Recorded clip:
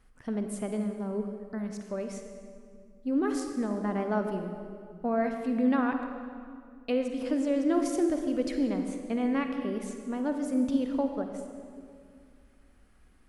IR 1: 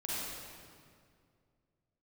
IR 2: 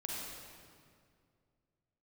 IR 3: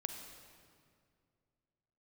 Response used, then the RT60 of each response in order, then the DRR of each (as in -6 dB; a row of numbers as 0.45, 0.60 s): 3; 2.2, 2.2, 2.2 s; -8.0, -4.0, 5.0 dB